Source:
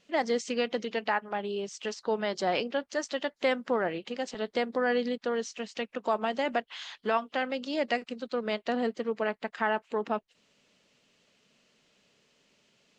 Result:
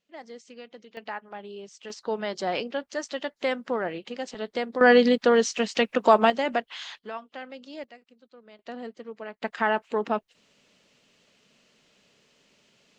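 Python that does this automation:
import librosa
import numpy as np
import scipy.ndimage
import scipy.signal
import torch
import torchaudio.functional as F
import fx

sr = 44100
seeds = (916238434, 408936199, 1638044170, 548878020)

y = fx.gain(x, sr, db=fx.steps((0.0, -15.0), (0.97, -7.0), (1.9, 0.0), (4.81, 11.0), (6.3, 3.0), (6.99, -9.0), (7.84, -20.0), (8.59, -8.5), (9.42, 4.0)))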